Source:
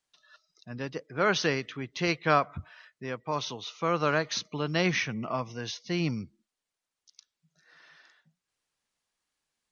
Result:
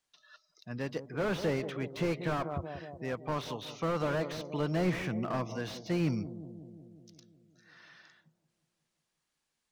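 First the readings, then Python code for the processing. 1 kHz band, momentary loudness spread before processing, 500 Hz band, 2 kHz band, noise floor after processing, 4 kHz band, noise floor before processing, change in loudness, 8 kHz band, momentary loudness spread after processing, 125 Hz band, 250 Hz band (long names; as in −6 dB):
−7.5 dB, 13 LU, −2.5 dB, −9.0 dB, −84 dBFS, −10.0 dB, below −85 dBFS, −4.5 dB, can't be measured, 13 LU, −0.5 dB, −1.0 dB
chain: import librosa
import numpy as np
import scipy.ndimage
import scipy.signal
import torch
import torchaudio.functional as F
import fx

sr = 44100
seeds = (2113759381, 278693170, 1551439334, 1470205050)

y = fx.echo_bbd(x, sr, ms=182, stages=1024, feedback_pct=66, wet_db=-13.0)
y = fx.slew_limit(y, sr, full_power_hz=26.0)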